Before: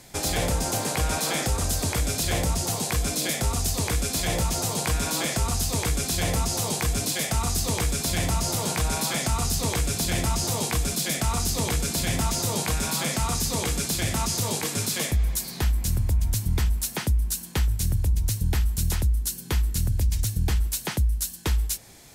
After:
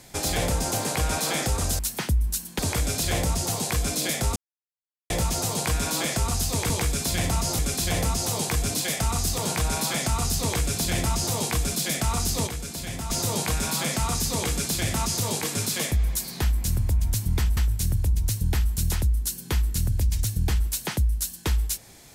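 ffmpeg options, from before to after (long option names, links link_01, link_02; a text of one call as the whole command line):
ffmpeg -i in.wav -filter_complex "[0:a]asplit=11[link_01][link_02][link_03][link_04][link_05][link_06][link_07][link_08][link_09][link_10][link_11];[link_01]atrim=end=1.792[link_12];[link_02]atrim=start=16.768:end=17.572[link_13];[link_03]atrim=start=1.788:end=3.56,asetpts=PTS-STARTPTS,afade=type=out:start_time=1.768:duration=0.004:curve=hsin[link_14];[link_04]atrim=start=3.56:end=4.3,asetpts=PTS-STARTPTS,volume=0[link_15];[link_05]atrim=start=4.3:end=5.902,asetpts=PTS-STARTPTS,afade=type=in:duration=0.004:curve=hsin[link_16];[link_06]atrim=start=7.688:end=8.582[link_17];[link_07]atrim=start=5.898:end=7.692[link_18];[link_08]atrim=start=8.578:end=11.672[link_19];[link_09]atrim=start=11.668:end=12.302,asetpts=PTS-STARTPTS,volume=-7.5dB[link_20];[link_10]atrim=start=12.298:end=16.772[link_21];[link_11]atrim=start=17.568[link_22];[link_12][link_13]acrossfade=duration=0.004:curve1=hsin:curve2=hsin[link_23];[link_14][link_15][link_16]concat=n=3:v=0:a=1[link_24];[link_23][link_24]acrossfade=duration=0.004:curve1=hsin:curve2=hsin[link_25];[link_25][link_17]acrossfade=duration=0.004:curve1=hsin:curve2=hsin[link_26];[link_26][link_18]acrossfade=duration=0.004:curve1=hsin:curve2=hsin[link_27];[link_27][link_19]acrossfade=duration=0.004:curve1=hsin:curve2=hsin[link_28];[link_28][link_20]acrossfade=duration=0.004:curve1=hsin:curve2=hsin[link_29];[link_29][link_21]acrossfade=duration=0.004:curve1=hsin:curve2=hsin[link_30];[link_30][link_22]acrossfade=duration=0.004:curve1=hsin:curve2=hsin" out.wav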